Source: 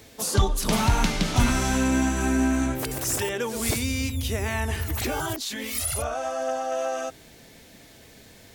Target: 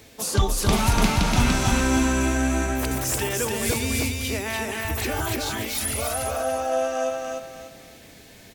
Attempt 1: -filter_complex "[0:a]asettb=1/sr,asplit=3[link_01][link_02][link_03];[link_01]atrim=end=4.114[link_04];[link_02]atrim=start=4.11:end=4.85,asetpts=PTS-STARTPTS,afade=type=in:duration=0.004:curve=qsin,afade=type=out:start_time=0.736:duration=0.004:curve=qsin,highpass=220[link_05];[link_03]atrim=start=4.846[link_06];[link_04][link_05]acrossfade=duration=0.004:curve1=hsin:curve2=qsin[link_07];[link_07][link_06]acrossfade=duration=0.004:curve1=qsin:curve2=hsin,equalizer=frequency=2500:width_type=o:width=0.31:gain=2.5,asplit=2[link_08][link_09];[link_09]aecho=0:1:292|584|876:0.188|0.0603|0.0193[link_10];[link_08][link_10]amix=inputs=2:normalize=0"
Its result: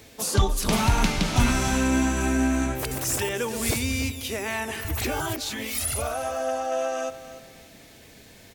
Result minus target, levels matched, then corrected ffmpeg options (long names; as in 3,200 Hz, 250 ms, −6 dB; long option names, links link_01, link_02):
echo-to-direct −12 dB
-filter_complex "[0:a]asettb=1/sr,asplit=3[link_01][link_02][link_03];[link_01]atrim=end=4.114[link_04];[link_02]atrim=start=4.11:end=4.85,asetpts=PTS-STARTPTS,afade=type=in:duration=0.004:curve=qsin,afade=type=out:start_time=0.736:duration=0.004:curve=qsin,highpass=220[link_05];[link_03]atrim=start=4.846[link_06];[link_04][link_05]acrossfade=duration=0.004:curve1=hsin:curve2=qsin[link_07];[link_07][link_06]acrossfade=duration=0.004:curve1=qsin:curve2=hsin,equalizer=frequency=2500:width_type=o:width=0.31:gain=2.5,asplit=2[link_08][link_09];[link_09]aecho=0:1:292|584|876|1168:0.75|0.24|0.0768|0.0246[link_10];[link_08][link_10]amix=inputs=2:normalize=0"